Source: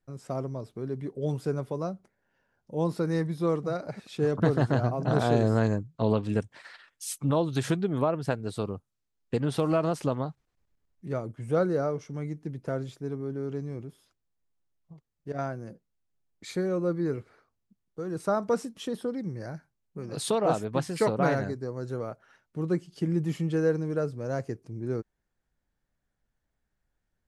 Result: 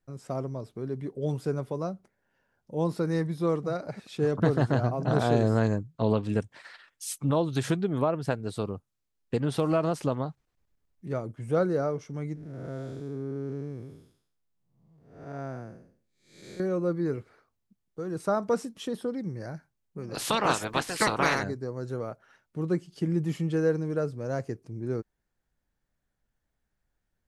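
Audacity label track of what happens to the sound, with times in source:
12.350000	16.600000	time blur width 0.298 s
20.140000	21.420000	spectral limiter ceiling under each frame's peak by 23 dB

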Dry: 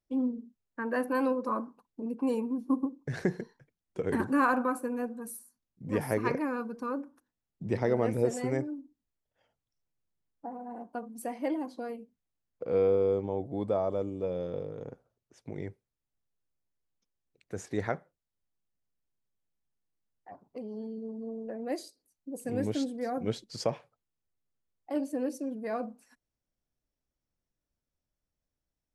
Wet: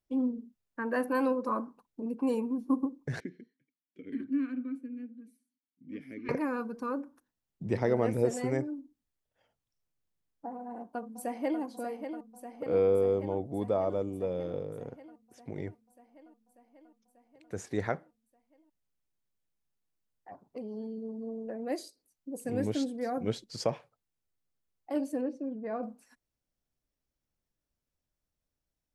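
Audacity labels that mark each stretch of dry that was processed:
3.200000	6.290000	vowel filter i
10.560000	11.610000	echo throw 0.59 s, feedback 75%, level -8 dB
25.210000	25.830000	tape spacing loss at 10 kHz 32 dB

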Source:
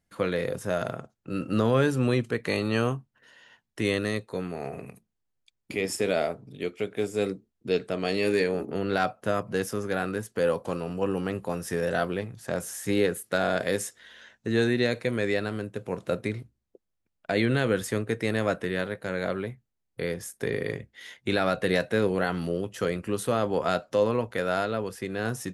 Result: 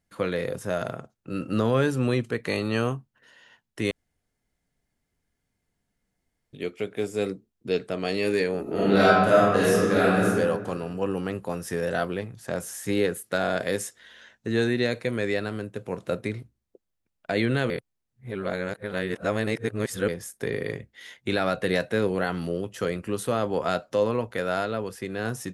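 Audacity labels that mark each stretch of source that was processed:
3.910000	6.530000	room tone
8.620000	10.270000	reverb throw, RT60 1.5 s, DRR -8.5 dB
17.700000	20.080000	reverse

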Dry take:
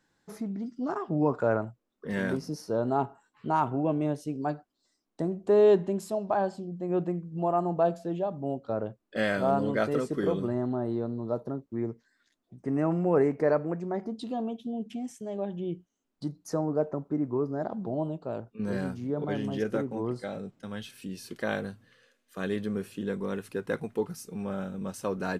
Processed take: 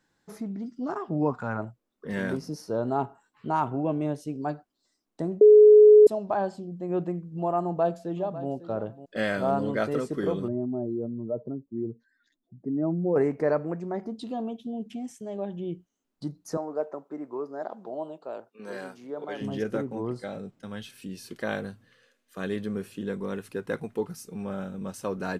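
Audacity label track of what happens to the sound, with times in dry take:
1.310000	1.590000	spectral gain 260–690 Hz -12 dB
5.410000	6.070000	bleep 423 Hz -9.5 dBFS
7.610000	8.500000	echo throw 0.55 s, feedback 10%, level -14 dB
10.480000	13.160000	spectral contrast raised exponent 1.8
16.570000	19.410000	HPF 450 Hz

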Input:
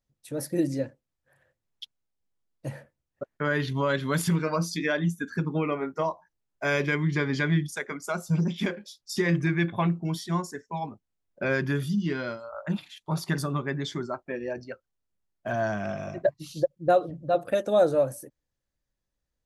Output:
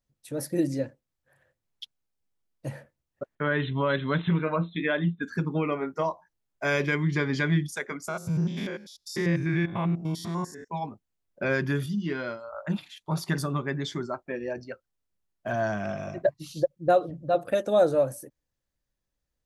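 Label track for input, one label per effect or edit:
3.350000	5.230000	brick-wall FIR low-pass 4100 Hz
8.080000	10.680000	stepped spectrum every 0.1 s
11.860000	12.480000	tone controls bass -4 dB, treble -6 dB

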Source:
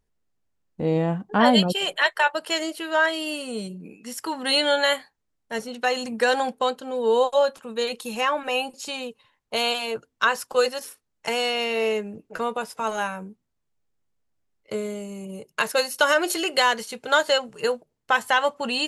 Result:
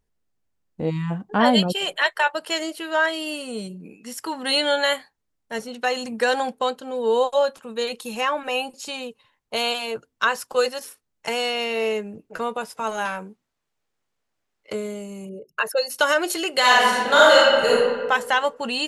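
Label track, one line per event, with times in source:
0.900000	1.110000	spectral delete 310–840 Hz
13.050000	14.730000	overdrive pedal drive 13 dB, tone 5100 Hz, clips at -17.5 dBFS
15.290000	15.900000	formant sharpening exponent 2
16.590000	17.730000	reverb throw, RT60 1.5 s, DRR -7.5 dB

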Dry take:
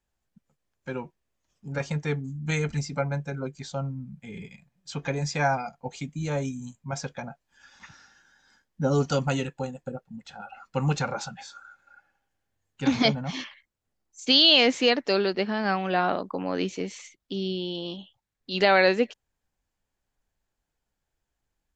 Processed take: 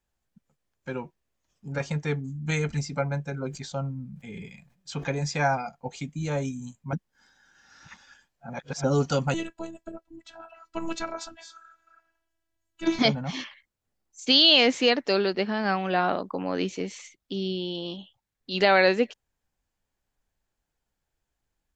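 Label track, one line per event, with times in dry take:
3.340000	5.080000	sustainer at most 110 dB/s
6.930000	8.840000	reverse
9.340000	12.990000	robotiser 328 Hz

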